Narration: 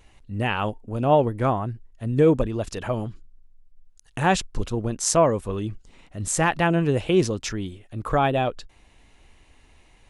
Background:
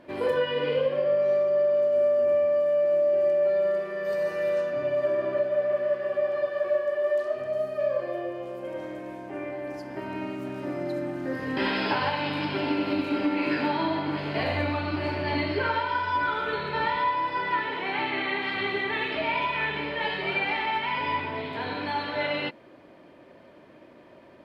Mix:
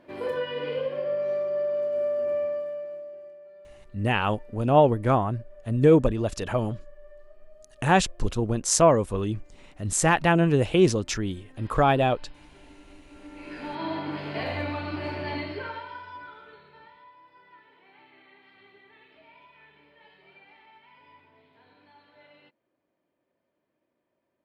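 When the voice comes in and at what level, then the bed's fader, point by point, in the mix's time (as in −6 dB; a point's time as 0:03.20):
3.65 s, +0.5 dB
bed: 0:02.45 −4.5 dB
0:03.44 −26 dB
0:13.05 −26 dB
0:13.91 −3.5 dB
0:15.25 −3.5 dB
0:16.99 −27.5 dB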